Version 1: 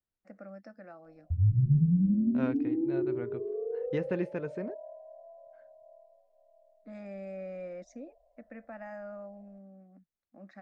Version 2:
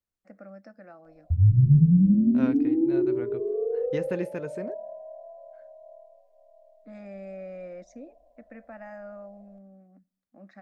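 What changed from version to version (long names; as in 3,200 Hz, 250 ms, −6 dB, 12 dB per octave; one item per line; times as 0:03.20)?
second voice: remove high-frequency loss of the air 150 metres
background +4.5 dB
reverb: on, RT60 0.70 s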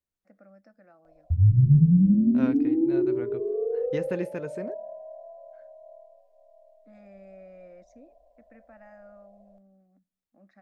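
first voice −8.5 dB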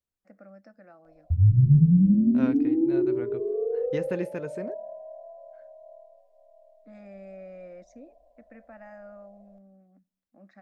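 first voice +4.5 dB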